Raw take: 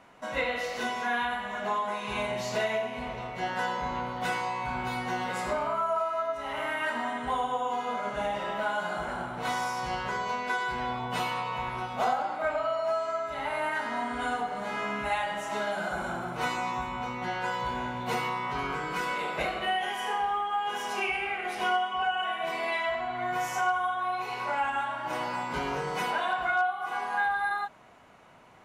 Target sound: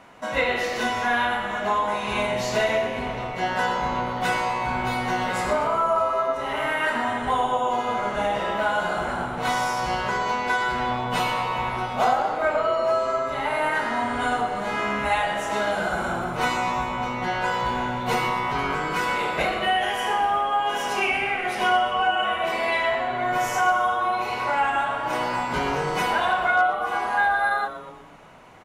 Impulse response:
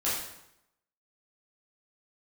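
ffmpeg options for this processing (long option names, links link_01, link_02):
-filter_complex "[0:a]asplit=7[link_01][link_02][link_03][link_04][link_05][link_06][link_07];[link_02]adelay=122,afreqshift=-130,volume=-13dB[link_08];[link_03]adelay=244,afreqshift=-260,volume=-18dB[link_09];[link_04]adelay=366,afreqshift=-390,volume=-23.1dB[link_10];[link_05]adelay=488,afreqshift=-520,volume=-28.1dB[link_11];[link_06]adelay=610,afreqshift=-650,volume=-33.1dB[link_12];[link_07]adelay=732,afreqshift=-780,volume=-38.2dB[link_13];[link_01][link_08][link_09][link_10][link_11][link_12][link_13]amix=inputs=7:normalize=0,volume=6.5dB"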